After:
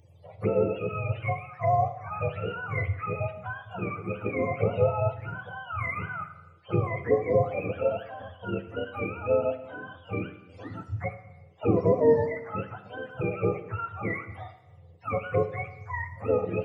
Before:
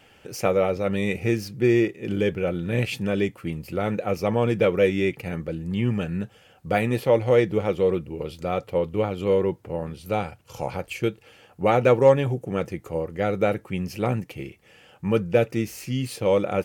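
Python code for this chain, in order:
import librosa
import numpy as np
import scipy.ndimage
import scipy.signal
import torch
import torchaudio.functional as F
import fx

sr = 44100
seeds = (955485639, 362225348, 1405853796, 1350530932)

y = fx.octave_mirror(x, sr, pivot_hz=500.0)
y = fx.env_phaser(y, sr, low_hz=230.0, high_hz=2100.0, full_db=-18.0)
y = fx.rev_schroeder(y, sr, rt60_s=0.99, comb_ms=27, drr_db=9.5)
y = y * 10.0 ** (-2.5 / 20.0)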